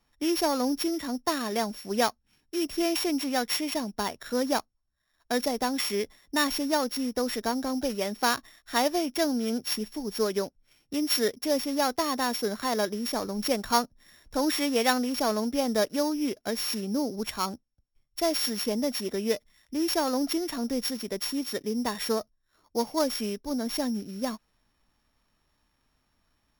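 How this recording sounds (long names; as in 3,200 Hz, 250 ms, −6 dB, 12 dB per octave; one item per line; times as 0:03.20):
a buzz of ramps at a fixed pitch in blocks of 8 samples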